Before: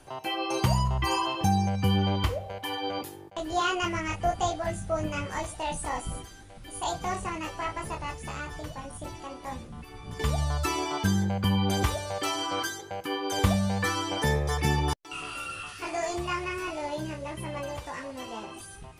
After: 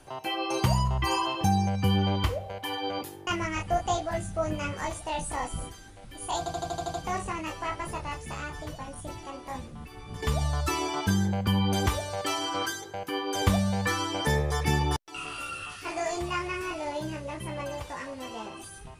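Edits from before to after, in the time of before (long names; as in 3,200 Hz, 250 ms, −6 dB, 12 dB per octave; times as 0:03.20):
0:03.27–0:03.80: remove
0:06.91: stutter 0.08 s, 8 plays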